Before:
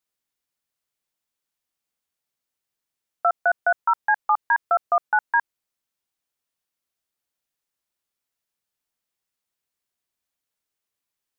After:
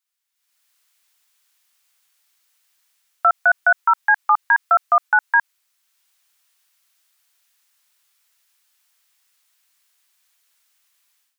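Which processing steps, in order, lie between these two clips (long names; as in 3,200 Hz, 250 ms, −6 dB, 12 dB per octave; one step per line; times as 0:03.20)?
high-pass filter 1,200 Hz 12 dB per octave
automatic gain control gain up to 17 dB
boost into a limiter +8 dB
level −6 dB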